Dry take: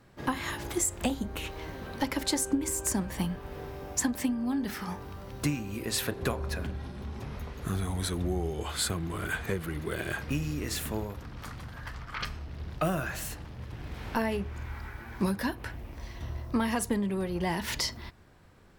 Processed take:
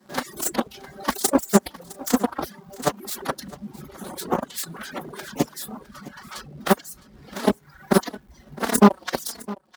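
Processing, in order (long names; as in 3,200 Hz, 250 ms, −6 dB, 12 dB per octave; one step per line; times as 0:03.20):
lower of the sound and its delayed copy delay 5.3 ms
rectangular room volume 320 cubic metres, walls mixed, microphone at 1.3 metres
harmonic generator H 6 −6 dB, 7 −12 dB, 8 −10 dB, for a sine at −12 dBFS
phase-vocoder stretch with locked phases 0.52×
graphic EQ with 15 bands 100 Hz −11 dB, 250 Hz +8 dB, 2,500 Hz −10 dB
reverb reduction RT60 0.56 s
high-pass filter 58 Hz 24 dB per octave
low-shelf EQ 460 Hz −6 dB
in parallel at −5.5 dB: log-companded quantiser 4 bits
on the sum: reverb reduction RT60 2 s
on a send: single-tap delay 660 ms −19.5 dB
on the sum: level +7 dB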